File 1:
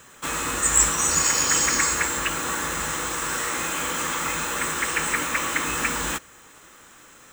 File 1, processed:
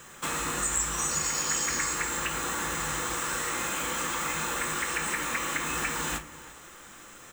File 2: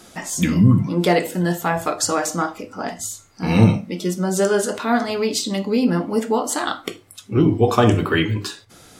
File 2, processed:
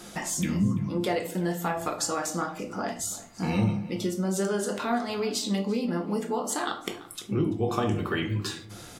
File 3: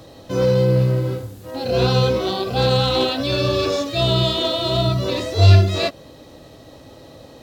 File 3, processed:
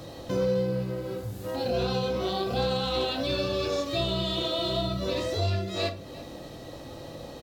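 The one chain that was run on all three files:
downward compressor 2.5 to 1, threshold −31 dBFS
slap from a distant wall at 58 metres, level −17 dB
rectangular room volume 300 cubic metres, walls furnished, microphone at 0.86 metres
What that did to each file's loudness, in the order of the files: −6.5, −9.0, −10.5 LU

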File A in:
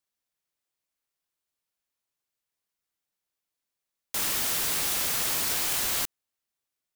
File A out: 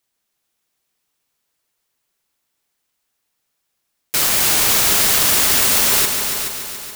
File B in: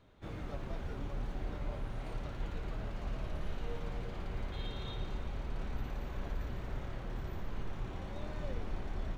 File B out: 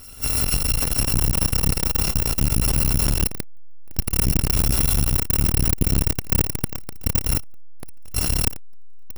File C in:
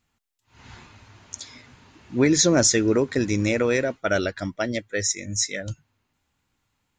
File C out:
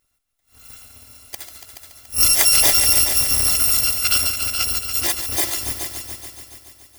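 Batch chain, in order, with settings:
samples in bit-reversed order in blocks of 256 samples
echo machine with several playback heads 142 ms, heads all three, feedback 52%, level −11 dB
saturating transformer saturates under 290 Hz
normalise the peak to −2 dBFS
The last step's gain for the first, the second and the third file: +12.0, +22.0, +3.5 decibels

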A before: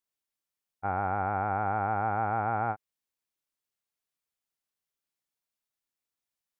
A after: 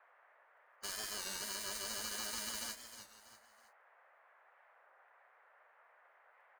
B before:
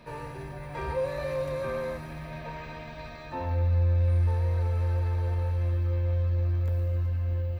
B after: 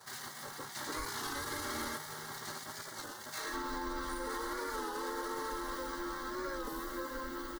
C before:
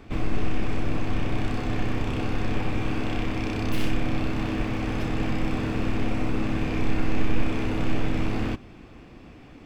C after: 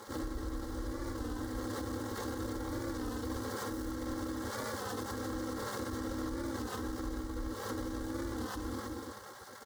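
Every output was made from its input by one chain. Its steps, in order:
running median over 41 samples
parametric band 170 Hz −8.5 dB 2.4 octaves
phaser with its sweep stopped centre 680 Hz, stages 6
comb filter 3.7 ms, depth 79%
repeating echo 321 ms, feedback 37%, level −14.5 dB
downward compressor 8 to 1, threshold −29 dBFS
high-shelf EQ 2,900 Hz +7 dB
gate on every frequency bin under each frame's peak −20 dB weak
noise in a band 530–1,900 Hz −80 dBFS
brickwall limiter −42 dBFS
wow of a warped record 33 1/3 rpm, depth 100 cents
level +13 dB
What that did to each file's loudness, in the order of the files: −10.5, −11.0, −10.5 LU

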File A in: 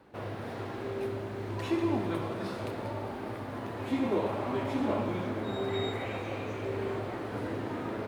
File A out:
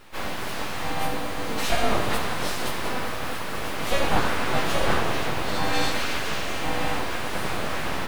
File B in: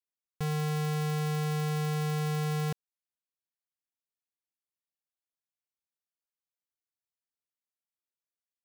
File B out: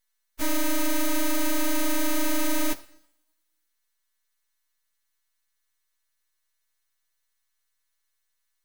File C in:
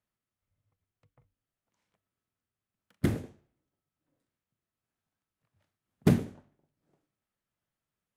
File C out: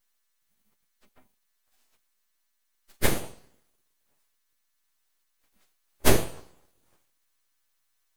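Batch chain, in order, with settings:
every partial snapped to a pitch grid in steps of 2 semitones
coupled-rooms reverb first 0.65 s, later 1.7 s, from −24 dB, DRR 11.5 dB
full-wave rectification
loudness normalisation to −27 LKFS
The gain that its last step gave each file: +10.5, +8.0, +8.5 decibels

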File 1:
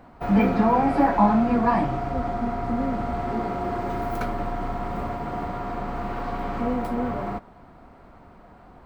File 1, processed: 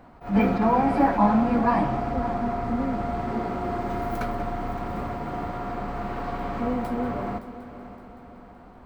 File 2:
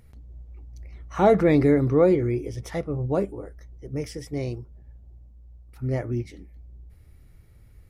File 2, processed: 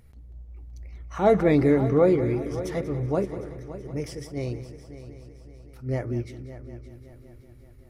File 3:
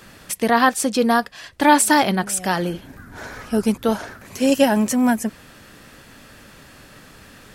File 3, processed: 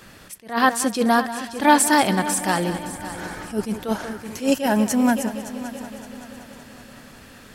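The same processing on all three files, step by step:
echo machine with several playback heads 189 ms, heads first and third, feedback 58%, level −15 dB
level that may rise only so fast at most 190 dB per second
level −1 dB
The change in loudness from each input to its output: −1.0, −1.0, −2.5 LU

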